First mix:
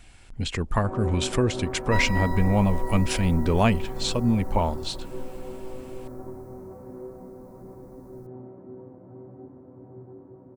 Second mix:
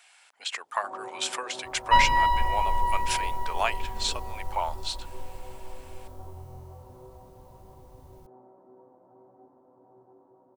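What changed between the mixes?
speech: add high-pass 740 Hz 24 dB/octave; first sound: add band-pass filter 870 Hz, Q 2; second sound: remove static phaser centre 600 Hz, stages 8

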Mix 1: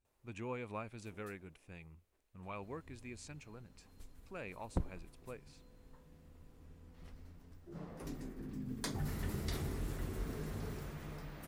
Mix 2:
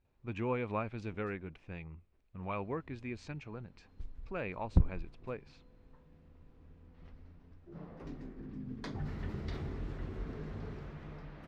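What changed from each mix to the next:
speech +8.5 dB; second sound: add tone controls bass +12 dB, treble +3 dB; master: add distance through air 220 m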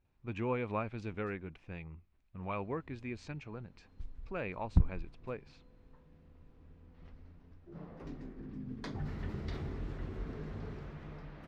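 second sound: add peaking EQ 460 Hz -12.5 dB 0.67 oct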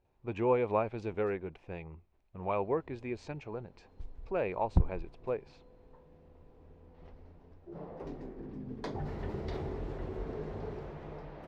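master: add high-order bell 580 Hz +8.5 dB

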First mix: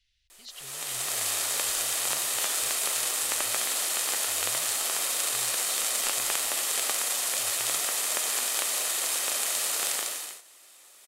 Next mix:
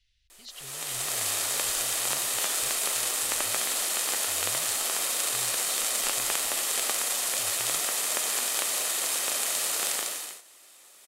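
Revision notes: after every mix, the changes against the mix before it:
master: add bass shelf 330 Hz +4.5 dB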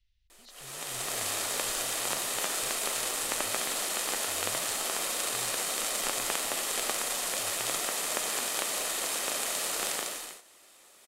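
speech -7.0 dB; master: add tilt EQ -1.5 dB/octave

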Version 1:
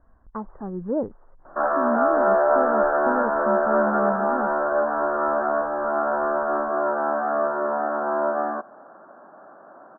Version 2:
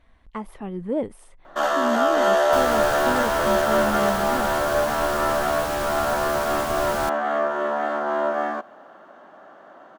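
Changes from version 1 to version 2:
second sound: unmuted; master: remove steep low-pass 1.6 kHz 72 dB/octave

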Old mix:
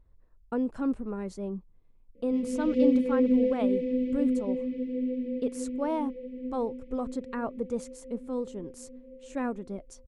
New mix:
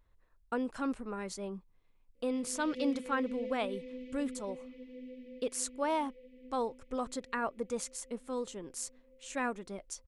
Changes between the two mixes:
background -11.0 dB; master: add tilt shelf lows -8.5 dB, about 790 Hz

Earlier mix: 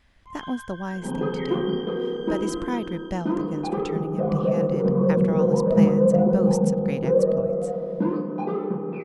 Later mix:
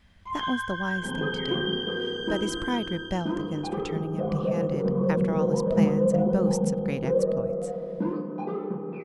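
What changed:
first sound +10.0 dB; second sound -4.5 dB

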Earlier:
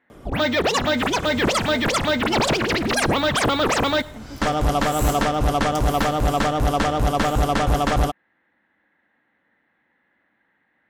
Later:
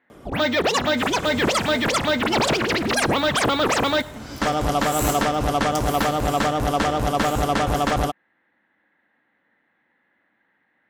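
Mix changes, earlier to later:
second sound +4.0 dB; master: add bass shelf 66 Hz -11 dB

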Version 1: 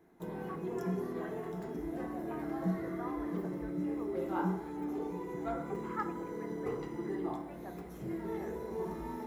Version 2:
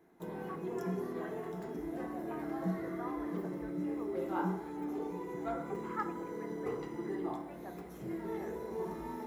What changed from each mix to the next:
master: add bass shelf 130 Hz -6.5 dB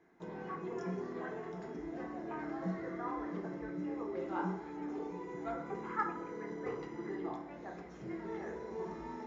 speech: send +9.0 dB; master: add rippled Chebyshev low-pass 7 kHz, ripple 3 dB

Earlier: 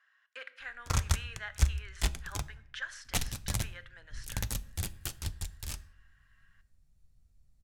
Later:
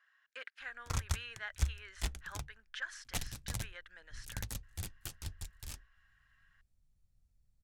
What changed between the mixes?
background -5.5 dB; reverb: off

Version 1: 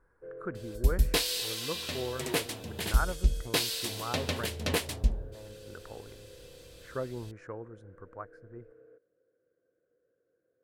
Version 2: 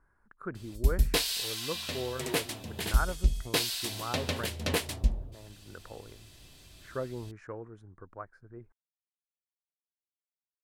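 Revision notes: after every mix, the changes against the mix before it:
first sound: muted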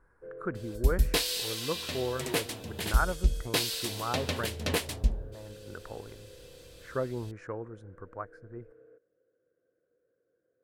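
speech +3.5 dB; first sound: unmuted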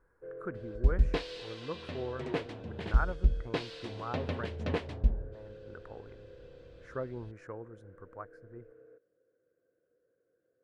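speech -5.5 dB; second sound: add tape spacing loss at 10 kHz 36 dB

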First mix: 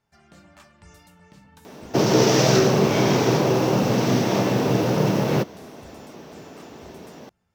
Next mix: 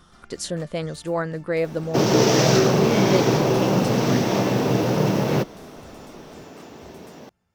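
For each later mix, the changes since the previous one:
speech: unmuted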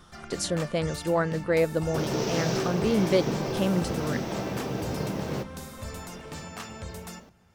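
first sound +11.5 dB; second sound -11.5 dB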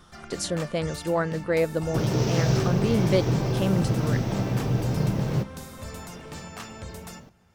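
second sound: remove high-pass 250 Hz 12 dB/octave

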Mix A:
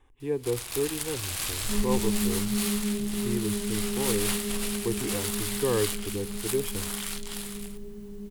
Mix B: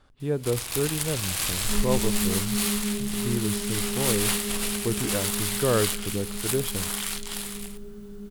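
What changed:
speech: remove static phaser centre 920 Hz, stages 8; first sound +4.0 dB

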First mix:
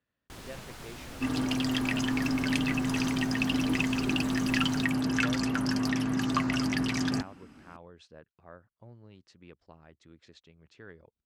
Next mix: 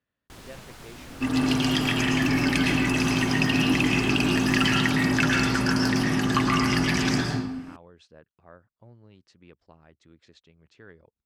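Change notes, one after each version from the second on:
second sound: send on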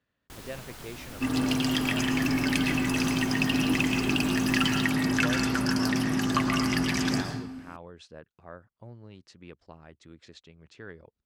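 speech +5.0 dB; second sound: send -7.5 dB; master: add treble shelf 12 kHz +10.5 dB

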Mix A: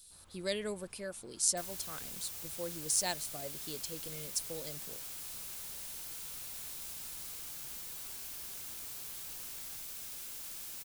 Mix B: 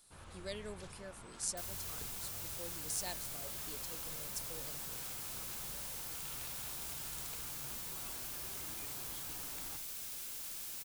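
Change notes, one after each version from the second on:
speech -8.5 dB; first sound +10.0 dB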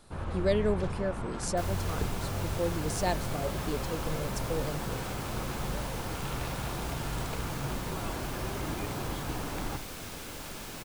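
master: remove pre-emphasis filter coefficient 0.9

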